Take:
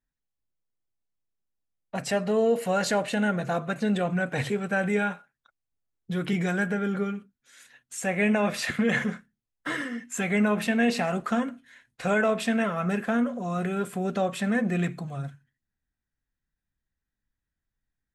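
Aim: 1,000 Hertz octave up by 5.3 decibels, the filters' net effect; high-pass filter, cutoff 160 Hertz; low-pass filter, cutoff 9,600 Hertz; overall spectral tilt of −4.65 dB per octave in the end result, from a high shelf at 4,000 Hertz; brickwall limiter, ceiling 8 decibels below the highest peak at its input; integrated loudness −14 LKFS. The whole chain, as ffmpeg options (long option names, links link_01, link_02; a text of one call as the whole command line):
ffmpeg -i in.wav -af "highpass=160,lowpass=9600,equalizer=frequency=1000:width_type=o:gain=7.5,highshelf=frequency=4000:gain=4,volume=14.5dB,alimiter=limit=-4dB:level=0:latency=1" out.wav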